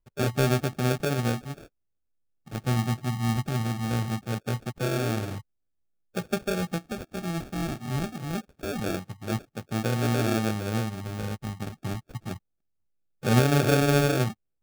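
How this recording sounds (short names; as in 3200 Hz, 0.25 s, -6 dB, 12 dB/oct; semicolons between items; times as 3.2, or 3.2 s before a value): phasing stages 8, 0.23 Hz, lowest notch 530–1100 Hz; aliases and images of a low sample rate 1000 Hz, jitter 0%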